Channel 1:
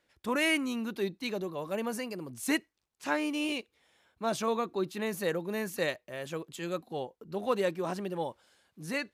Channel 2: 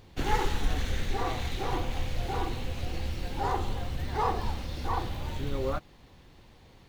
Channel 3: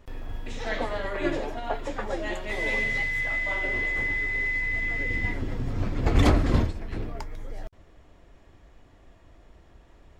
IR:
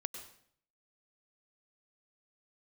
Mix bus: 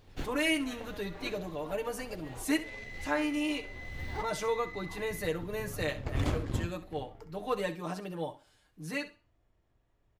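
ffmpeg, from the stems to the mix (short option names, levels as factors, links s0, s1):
-filter_complex "[0:a]aecho=1:1:6.6:0.89,volume=1,asplit=3[s0][s1][s2];[s1]volume=0.178[s3];[1:a]volume=0.841[s4];[2:a]equalizer=f=110:t=o:w=0.46:g=8,aeval=exprs='0.282*(cos(1*acos(clip(val(0)/0.282,-1,1)))-cos(1*PI/2))+0.0398*(cos(3*acos(clip(val(0)/0.282,-1,1)))-cos(3*PI/2))+0.00708*(cos(7*acos(clip(val(0)/0.282,-1,1)))-cos(7*PI/2))':c=same,volume=0.398,asplit=2[s5][s6];[s6]volume=0.237[s7];[s2]apad=whole_len=307864[s8];[s4][s8]sidechaincompress=threshold=0.00447:ratio=8:attack=16:release=337[s9];[s3][s7]amix=inputs=2:normalize=0,aecho=0:1:65|130|195|260:1|0.22|0.0484|0.0106[s10];[s0][s9][s5][s10]amix=inputs=4:normalize=0,flanger=delay=6.7:depth=4:regen=-84:speed=0.39:shape=sinusoidal"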